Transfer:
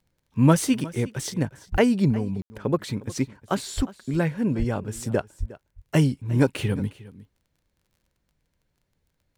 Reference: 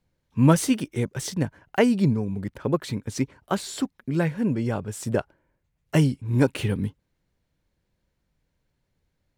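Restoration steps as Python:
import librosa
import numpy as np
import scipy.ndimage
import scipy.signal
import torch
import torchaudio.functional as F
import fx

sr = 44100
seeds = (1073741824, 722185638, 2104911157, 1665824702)

y = fx.fix_declick_ar(x, sr, threshold=6.5)
y = fx.fix_deplosive(y, sr, at_s=(1.71, 3.76, 4.58, 5.39))
y = fx.fix_ambience(y, sr, seeds[0], print_start_s=8.46, print_end_s=8.96, start_s=2.42, end_s=2.5)
y = fx.fix_echo_inverse(y, sr, delay_ms=359, level_db=-19.0)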